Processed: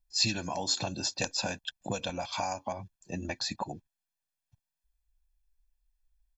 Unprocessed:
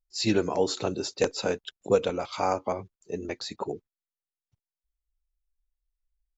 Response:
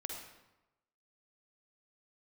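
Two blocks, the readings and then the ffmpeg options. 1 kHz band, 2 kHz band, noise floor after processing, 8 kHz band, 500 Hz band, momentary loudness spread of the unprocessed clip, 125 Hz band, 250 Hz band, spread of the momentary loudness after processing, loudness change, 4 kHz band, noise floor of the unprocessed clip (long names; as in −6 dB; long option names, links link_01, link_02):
−4.0 dB, 0.0 dB, below −85 dBFS, can't be measured, −12.0 dB, 11 LU, −1.5 dB, −7.0 dB, 12 LU, −4.0 dB, +3.5 dB, below −85 dBFS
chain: -filter_complex "[0:a]aecho=1:1:1.2:0.9,acrossover=split=3000[link_01][link_02];[link_01]acompressor=threshold=-33dB:ratio=6[link_03];[link_03][link_02]amix=inputs=2:normalize=0,volume=1.5dB"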